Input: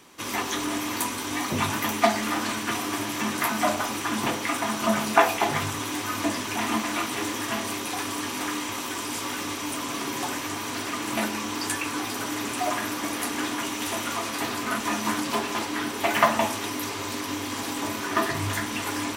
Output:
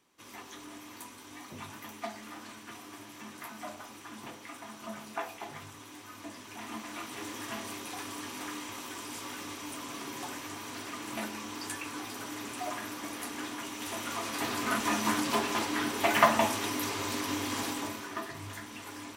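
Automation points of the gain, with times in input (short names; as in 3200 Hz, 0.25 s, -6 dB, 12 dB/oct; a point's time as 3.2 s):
6.23 s -18.5 dB
7.44 s -10 dB
13.7 s -10 dB
14.69 s -2.5 dB
17.63 s -2.5 dB
18.22 s -14.5 dB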